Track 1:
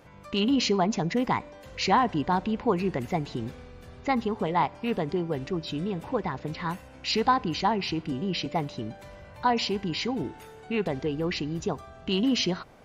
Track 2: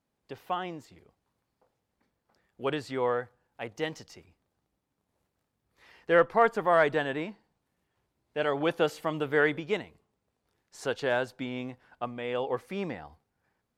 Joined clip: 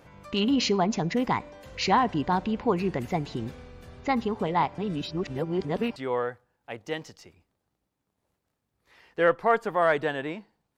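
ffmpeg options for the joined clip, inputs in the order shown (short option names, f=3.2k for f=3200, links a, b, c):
-filter_complex "[0:a]apad=whole_dur=10.77,atrim=end=10.77,asplit=2[a][b];[a]atrim=end=4.782[c];[b]atrim=start=4.778:end=5.962,asetpts=PTS-STARTPTS,areverse[d];[1:a]atrim=start=2.868:end=7.68[e];[c][d]acrossfade=d=0.004:c1=hsin:c2=hsin[f];[f][e]acrossfade=d=0.004:c1=hsin:c2=hsin"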